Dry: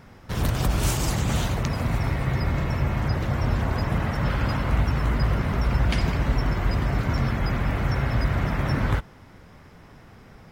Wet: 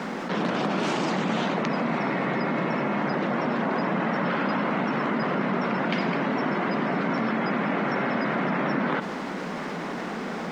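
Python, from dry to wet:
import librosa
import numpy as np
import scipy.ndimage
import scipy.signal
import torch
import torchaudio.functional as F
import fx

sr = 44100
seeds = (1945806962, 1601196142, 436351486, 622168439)

y = scipy.signal.sosfilt(scipy.signal.butter(8, 180.0, 'highpass', fs=sr, output='sos'), x)
y = fx.high_shelf(y, sr, hz=5700.0, db=-10.5)
y = fx.quant_dither(y, sr, seeds[0], bits=10, dither='triangular')
y = fx.air_absorb(y, sr, metres=140.0)
y = fx.env_flatten(y, sr, amount_pct=70)
y = y * 10.0 ** (2.5 / 20.0)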